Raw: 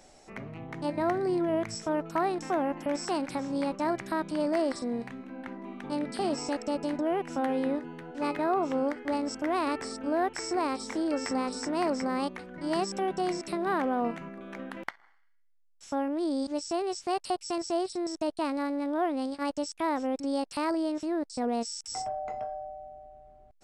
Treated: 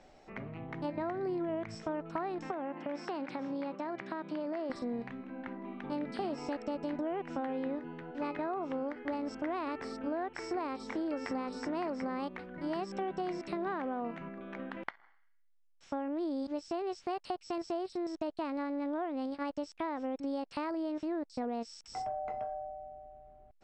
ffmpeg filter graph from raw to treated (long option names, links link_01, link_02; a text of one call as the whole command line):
ffmpeg -i in.wav -filter_complex "[0:a]asettb=1/sr,asplit=3[link_01][link_02][link_03];[link_01]atrim=end=2.514[link_04];[link_02]atrim=start=2.51:end=4.7,asetpts=PTS-STARTPTS,afade=type=in:duration=0.004:curve=qsin,afade=type=out:start_time=2.186:duration=0.004:curve=qsin,acompressor=threshold=-29dB:ratio=6:attack=3.2:release=140:knee=1:detection=peak,highpass=190,lowpass=6000[link_05];[link_03]atrim=start=4.696[link_06];[link_04][link_05]acrossfade=duration=0.004:curve1=hsin:curve2=qsin[link_07];[link_07][link_06]acrossfade=duration=0.004:curve1=qsin:curve2=hsin,lowpass=3400,acompressor=threshold=-30dB:ratio=6,volume=-2dB" out.wav